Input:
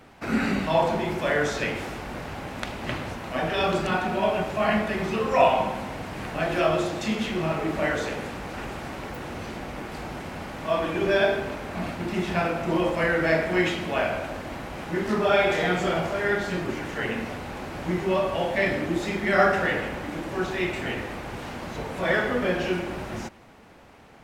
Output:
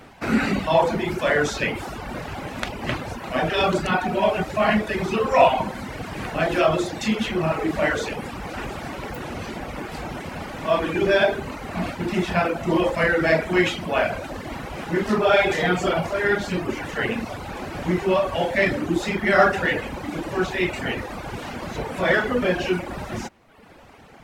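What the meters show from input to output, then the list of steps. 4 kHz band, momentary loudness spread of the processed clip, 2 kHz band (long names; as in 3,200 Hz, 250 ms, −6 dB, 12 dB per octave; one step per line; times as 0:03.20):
+3.5 dB, 14 LU, +3.5 dB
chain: reverb reduction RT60 0.9 s
in parallel at −9 dB: soft clipping −22 dBFS, distortion −11 dB
on the sum: level +3 dB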